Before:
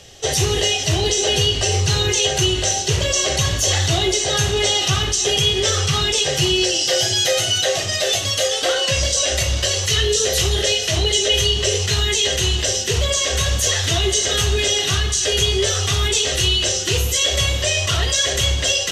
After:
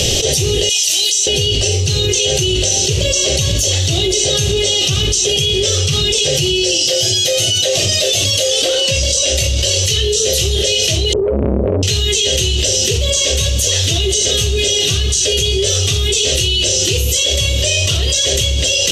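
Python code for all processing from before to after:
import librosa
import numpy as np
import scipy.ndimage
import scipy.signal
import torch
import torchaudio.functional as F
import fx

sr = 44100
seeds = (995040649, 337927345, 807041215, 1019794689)

y = fx.chain(x, sr, fx.highpass(hz=290.0, slope=6),
    fx.differentiator(), at=(0.69, 1.27))
y = fx.chain(y, sr, fx.cheby2_lowpass(hz=3800.0, order=4, stop_db=80),
    fx.transformer_sat(knee_hz=730.0), at=(11.13, 11.83))
y = fx.band_shelf(y, sr, hz=1200.0, db=-13.0, octaves=1.7)
y = fx.env_flatten(y, sr, amount_pct=100)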